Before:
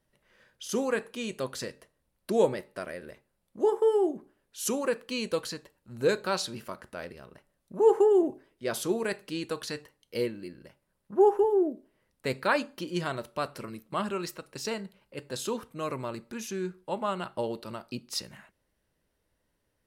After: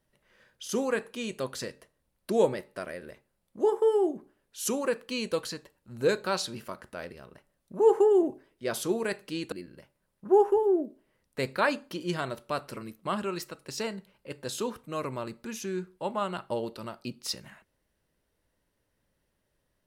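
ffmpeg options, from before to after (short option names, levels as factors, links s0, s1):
-filter_complex "[0:a]asplit=2[s0][s1];[s0]atrim=end=9.522[s2];[s1]atrim=start=10.388[s3];[s2][s3]acrossfade=d=0.004:c1=hsin:c2=hsin"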